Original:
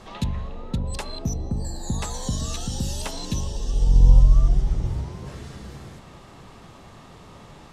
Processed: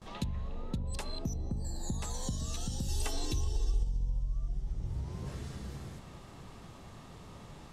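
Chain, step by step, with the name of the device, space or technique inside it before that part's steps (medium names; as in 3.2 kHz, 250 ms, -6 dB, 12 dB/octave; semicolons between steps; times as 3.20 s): ASMR close-microphone chain (bass shelf 240 Hz +5 dB; compression 5:1, threshold -25 dBFS, peak gain reduction 20 dB; treble shelf 6 kHz +5 dB); gate with hold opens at -35 dBFS; 2.88–3.83 s: comb 2.6 ms, depth 92%; trim -7 dB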